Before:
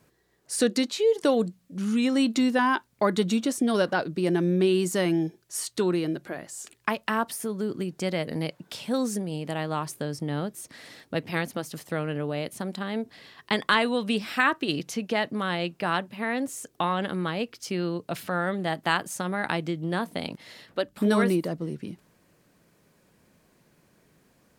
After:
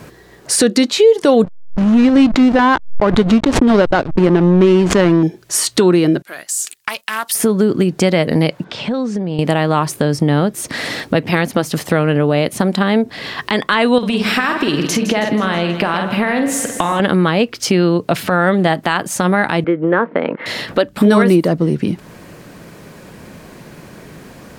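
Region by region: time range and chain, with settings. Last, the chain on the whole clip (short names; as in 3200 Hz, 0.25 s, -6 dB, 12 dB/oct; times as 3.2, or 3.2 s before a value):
1.44–5.23 backlash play -23.5 dBFS + air absorption 56 m + backwards sustainer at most 110 dB/s
6.22–7.35 pre-emphasis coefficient 0.97 + gate -59 dBFS, range -11 dB + Doppler distortion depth 0.12 ms
8.64–9.39 compressor 2.5:1, threshold -46 dBFS + air absorption 140 m
13.98–17 doubler 47 ms -7.5 dB + compressor 5:1, threshold -32 dBFS + split-band echo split 1400 Hz, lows 0.116 s, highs 0.161 s, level -11 dB
19.64–20.46 speaker cabinet 310–2000 Hz, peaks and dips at 490 Hz +6 dB, 730 Hz -8 dB, 1400 Hz +3 dB + mismatched tape noise reduction encoder only
whole clip: high shelf 5100 Hz -7 dB; compressor 2:1, threshold -44 dBFS; maximiser +27 dB; gain -1 dB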